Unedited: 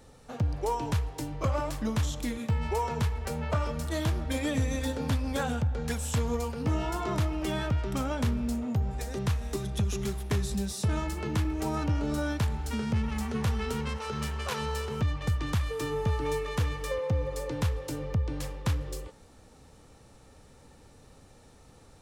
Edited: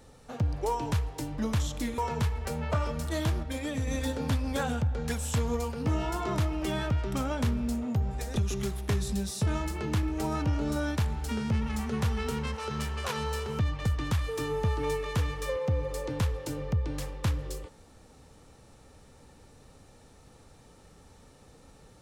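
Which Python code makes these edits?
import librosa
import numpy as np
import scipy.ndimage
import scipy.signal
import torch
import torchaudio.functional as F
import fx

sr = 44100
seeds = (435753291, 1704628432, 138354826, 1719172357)

y = fx.edit(x, sr, fx.cut(start_s=1.38, length_s=0.43),
    fx.cut(start_s=2.41, length_s=0.37),
    fx.clip_gain(start_s=4.23, length_s=0.44, db=-4.0),
    fx.cut(start_s=9.16, length_s=0.62), tone=tone)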